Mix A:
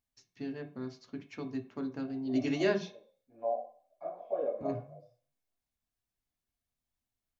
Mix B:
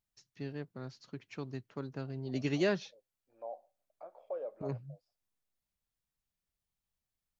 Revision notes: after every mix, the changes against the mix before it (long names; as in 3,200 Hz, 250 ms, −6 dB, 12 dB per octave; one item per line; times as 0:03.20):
second voice +4.5 dB
reverb: off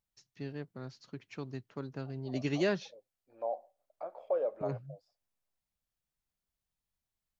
second voice +8.0 dB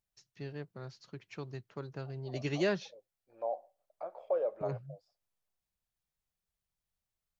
master: add parametric band 260 Hz −11.5 dB 0.21 octaves